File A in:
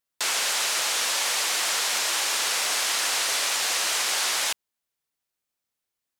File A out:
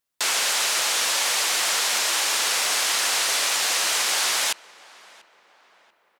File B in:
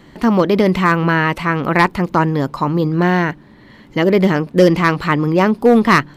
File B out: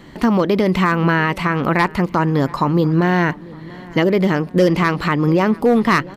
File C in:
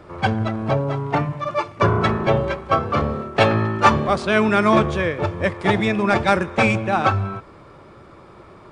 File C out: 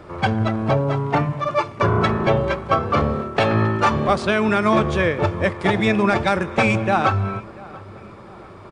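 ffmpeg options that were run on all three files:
ffmpeg -i in.wav -filter_complex "[0:a]alimiter=limit=-9dB:level=0:latency=1:release=192,asplit=2[link_01][link_02];[link_02]adelay=689,lowpass=frequency=2200:poles=1,volume=-21dB,asplit=2[link_03][link_04];[link_04]adelay=689,lowpass=frequency=2200:poles=1,volume=0.5,asplit=2[link_05][link_06];[link_06]adelay=689,lowpass=frequency=2200:poles=1,volume=0.5,asplit=2[link_07][link_08];[link_08]adelay=689,lowpass=frequency=2200:poles=1,volume=0.5[link_09];[link_01][link_03][link_05][link_07][link_09]amix=inputs=5:normalize=0,volume=2.5dB" out.wav

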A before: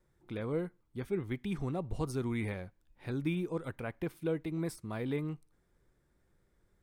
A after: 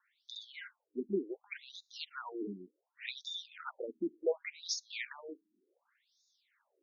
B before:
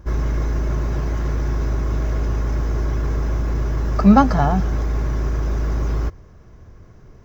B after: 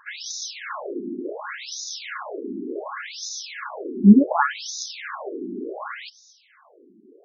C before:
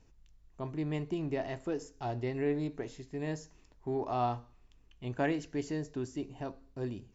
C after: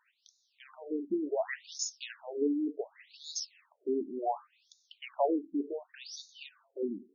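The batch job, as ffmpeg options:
ffmpeg -i in.wav -af "crystalizer=i=7:c=0,afftfilt=real='re*between(b*sr/1024,270*pow(5000/270,0.5+0.5*sin(2*PI*0.68*pts/sr))/1.41,270*pow(5000/270,0.5+0.5*sin(2*PI*0.68*pts/sr))*1.41)':imag='im*between(b*sr/1024,270*pow(5000/270,0.5+0.5*sin(2*PI*0.68*pts/sr))/1.41,270*pow(5000/270,0.5+0.5*sin(2*PI*0.68*pts/sr))*1.41)':win_size=1024:overlap=0.75,volume=4dB" out.wav

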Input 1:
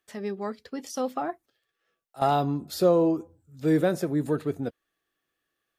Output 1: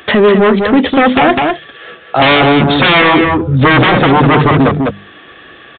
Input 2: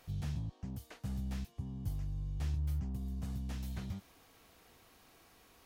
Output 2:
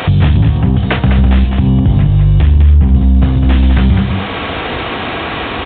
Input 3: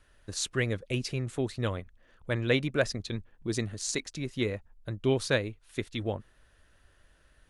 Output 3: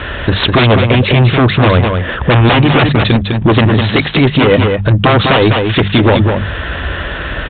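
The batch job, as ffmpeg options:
ffmpeg -i in.wav -filter_complex "[0:a]bandreject=frequency=50:width_type=h:width=6,bandreject=frequency=100:width_type=h:width=6,bandreject=frequency=150:width_type=h:width=6,bandreject=frequency=200:width_type=h:width=6,aresample=16000,aeval=exprs='0.282*sin(PI/2*7.08*val(0)/0.282)':channel_layout=same,aresample=44100,highpass=frequency=45:width=0.5412,highpass=frequency=45:width=1.3066,asoftclip=type=tanh:threshold=-14.5dB,acompressor=threshold=-36dB:ratio=2.5,asplit=2[link_01][link_02];[link_02]aecho=0:1:203:0.501[link_03];[link_01][link_03]amix=inputs=2:normalize=0,aresample=8000,aresample=44100,alimiter=level_in=25dB:limit=-1dB:release=50:level=0:latency=1,volume=-1dB" out.wav

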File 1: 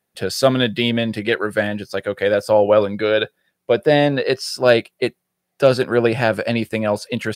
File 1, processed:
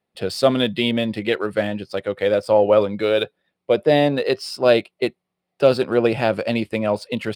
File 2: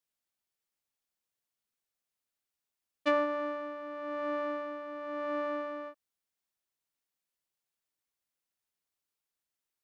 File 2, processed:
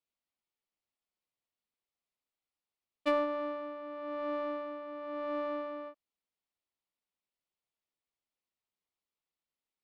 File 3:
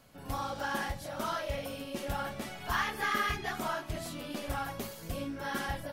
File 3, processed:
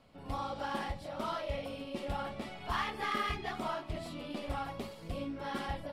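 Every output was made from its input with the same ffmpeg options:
ffmpeg -i in.wav -af "adynamicsmooth=sensitivity=7:basefreq=5700,equalizer=frequency=125:width_type=o:width=0.33:gain=-5,equalizer=frequency=1600:width_type=o:width=0.33:gain=-8,equalizer=frequency=6300:width_type=o:width=0.33:gain=-8,volume=-1dB" out.wav

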